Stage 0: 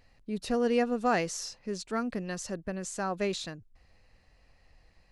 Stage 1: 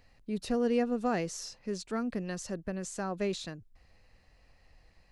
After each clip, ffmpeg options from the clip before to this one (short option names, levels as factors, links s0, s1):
-filter_complex "[0:a]acrossover=split=480[s0][s1];[s1]acompressor=threshold=0.00631:ratio=1.5[s2];[s0][s2]amix=inputs=2:normalize=0"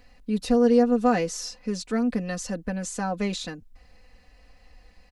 -af "aecho=1:1:4:0.78,volume=1.78"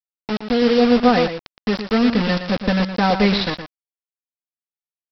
-filter_complex "[0:a]dynaudnorm=f=360:g=5:m=3.76,aresample=11025,acrusher=bits=3:mix=0:aa=0.000001,aresample=44100,asplit=2[s0][s1];[s1]adelay=116.6,volume=0.355,highshelf=f=4000:g=-2.62[s2];[s0][s2]amix=inputs=2:normalize=0"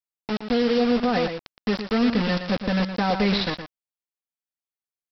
-af "alimiter=limit=0.376:level=0:latency=1:release=59,volume=0.668"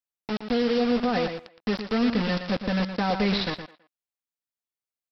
-filter_complex "[0:a]asplit=2[s0][s1];[s1]adelay=210,highpass=300,lowpass=3400,asoftclip=type=hard:threshold=0.0944,volume=0.0794[s2];[s0][s2]amix=inputs=2:normalize=0,volume=0.75"